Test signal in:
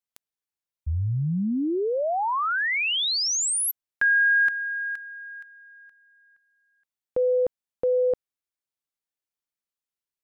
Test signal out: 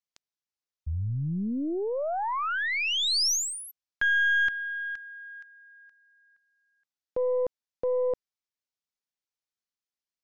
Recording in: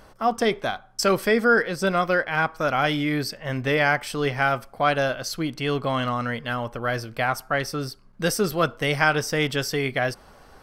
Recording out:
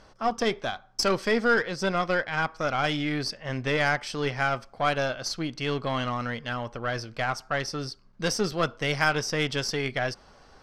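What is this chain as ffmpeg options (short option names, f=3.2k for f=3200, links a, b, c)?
-af "lowpass=f=5.7k:t=q:w=1.7,aeval=exprs='0.668*(cos(1*acos(clip(val(0)/0.668,-1,1)))-cos(1*PI/2))+0.0299*(cos(8*acos(clip(val(0)/0.668,-1,1)))-cos(8*PI/2))':c=same,volume=-4.5dB"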